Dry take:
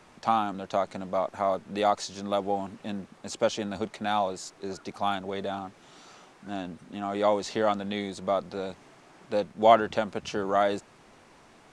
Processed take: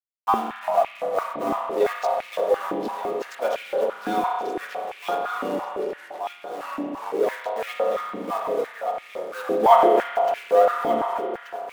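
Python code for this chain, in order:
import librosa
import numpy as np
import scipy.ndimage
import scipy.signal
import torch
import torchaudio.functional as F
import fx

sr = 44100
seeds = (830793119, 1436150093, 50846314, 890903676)

p1 = fx.bin_expand(x, sr, power=1.5)
p2 = p1 + 0.94 * np.pad(p1, (int(4.2 * sr / 1000.0), 0))[:len(p1)]
p3 = fx.rider(p2, sr, range_db=3, speed_s=0.5)
p4 = p2 + F.gain(torch.from_numpy(p3), 1.0).numpy()
p5 = fx.dmg_noise_colour(p4, sr, seeds[0], colour='blue', level_db=-35.0)
p6 = fx.backlash(p5, sr, play_db=-17.0)
p7 = fx.rev_spring(p6, sr, rt60_s=2.2, pass_ms=(31,), chirp_ms=30, drr_db=-0.5)
p8 = fx.echo_pitch(p7, sr, ms=277, semitones=-4, count=3, db_per_echo=-6.0)
p9 = p8 + fx.echo_feedback(p8, sr, ms=1181, feedback_pct=33, wet_db=-8.0, dry=0)
p10 = fx.filter_held_highpass(p9, sr, hz=5.9, low_hz=290.0, high_hz=2300.0)
y = F.gain(torch.from_numpy(p10), -8.5).numpy()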